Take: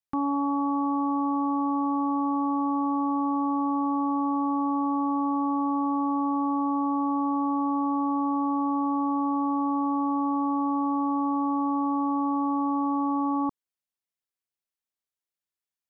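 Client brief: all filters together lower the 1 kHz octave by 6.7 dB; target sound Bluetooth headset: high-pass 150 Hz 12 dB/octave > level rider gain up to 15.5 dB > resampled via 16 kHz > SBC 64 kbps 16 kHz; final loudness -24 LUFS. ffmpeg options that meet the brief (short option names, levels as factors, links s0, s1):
-af "highpass=150,equalizer=f=1000:t=o:g=-8,dynaudnorm=m=5.96,aresample=16000,aresample=44100,volume=1.26" -ar 16000 -c:a sbc -b:a 64k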